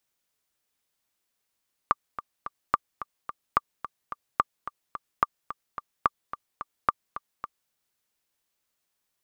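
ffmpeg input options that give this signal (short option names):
-f lavfi -i "aevalsrc='pow(10,(-6.5-13.5*gte(mod(t,3*60/217),60/217))/20)*sin(2*PI*1180*mod(t,60/217))*exp(-6.91*mod(t,60/217)/0.03)':d=5.8:s=44100"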